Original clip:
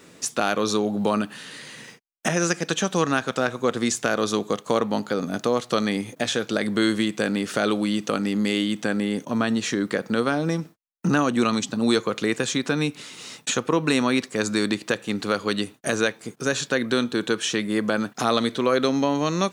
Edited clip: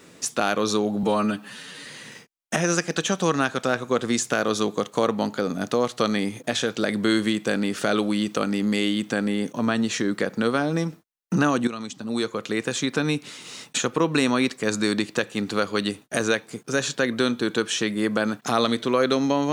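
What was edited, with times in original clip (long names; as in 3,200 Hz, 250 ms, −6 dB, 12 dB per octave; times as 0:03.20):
0:01.03–0:01.58: time-stretch 1.5×
0:11.40–0:12.70: fade in, from −13 dB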